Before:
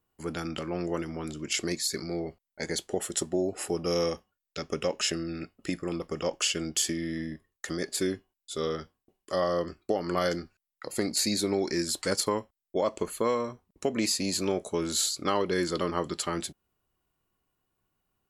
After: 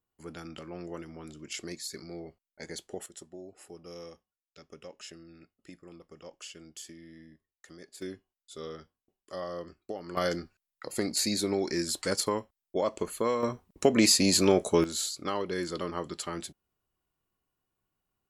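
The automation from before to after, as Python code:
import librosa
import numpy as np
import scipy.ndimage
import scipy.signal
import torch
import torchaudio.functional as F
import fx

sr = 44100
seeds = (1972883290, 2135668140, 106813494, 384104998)

y = fx.gain(x, sr, db=fx.steps((0.0, -9.0), (3.06, -17.5), (8.02, -10.0), (10.17, -1.5), (13.43, 6.0), (14.84, -5.0)))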